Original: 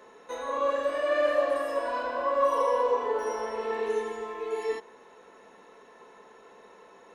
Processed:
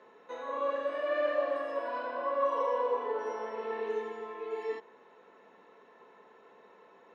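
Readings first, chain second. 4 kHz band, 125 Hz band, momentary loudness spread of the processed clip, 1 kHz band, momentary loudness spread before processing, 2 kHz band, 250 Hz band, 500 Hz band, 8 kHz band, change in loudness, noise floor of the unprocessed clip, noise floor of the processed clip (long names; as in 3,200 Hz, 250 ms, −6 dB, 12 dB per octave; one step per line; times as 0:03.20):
−7.5 dB, can't be measured, 10 LU, −5.0 dB, 10 LU, −5.0 dB, −5.0 dB, −5.0 dB, below −15 dB, −5.0 dB, −54 dBFS, −59 dBFS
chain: band-pass filter 110–3,600 Hz
level −5 dB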